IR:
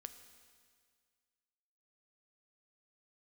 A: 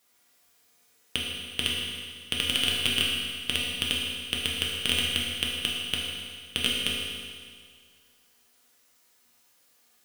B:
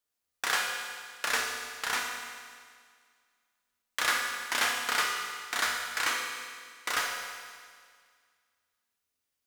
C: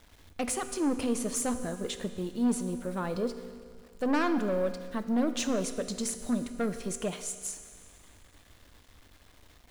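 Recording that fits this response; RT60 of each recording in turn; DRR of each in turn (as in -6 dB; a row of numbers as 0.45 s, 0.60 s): C; 1.9 s, 1.9 s, 1.9 s; -4.5 dB, 0.0 dB, 8.5 dB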